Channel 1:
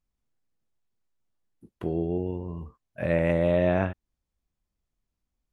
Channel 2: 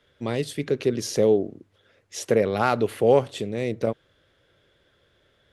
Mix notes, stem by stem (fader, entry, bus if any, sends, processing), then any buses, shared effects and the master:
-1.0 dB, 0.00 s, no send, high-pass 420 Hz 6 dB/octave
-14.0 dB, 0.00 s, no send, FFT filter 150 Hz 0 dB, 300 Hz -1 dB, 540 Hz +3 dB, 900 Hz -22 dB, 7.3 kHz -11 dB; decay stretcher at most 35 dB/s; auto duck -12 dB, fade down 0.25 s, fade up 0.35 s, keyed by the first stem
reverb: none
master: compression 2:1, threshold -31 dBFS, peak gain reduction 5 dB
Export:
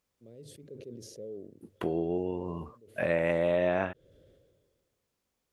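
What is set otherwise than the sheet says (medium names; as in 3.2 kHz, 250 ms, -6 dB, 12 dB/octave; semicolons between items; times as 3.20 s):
stem 1 -1.0 dB -> +8.0 dB; stem 2 -14.0 dB -> -25.0 dB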